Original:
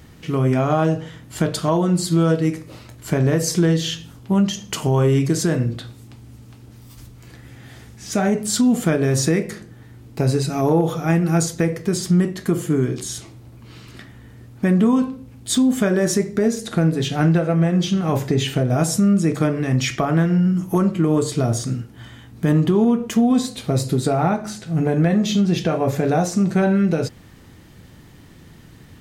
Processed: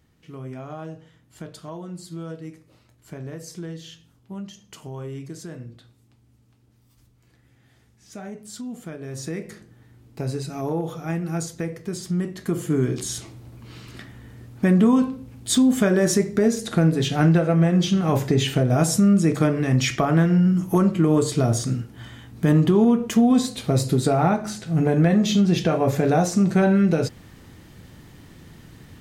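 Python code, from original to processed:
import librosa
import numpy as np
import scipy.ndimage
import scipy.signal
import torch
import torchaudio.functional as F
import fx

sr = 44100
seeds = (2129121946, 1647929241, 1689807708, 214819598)

y = fx.gain(x, sr, db=fx.line((8.99, -17.5), (9.51, -9.0), (12.08, -9.0), (12.97, -0.5)))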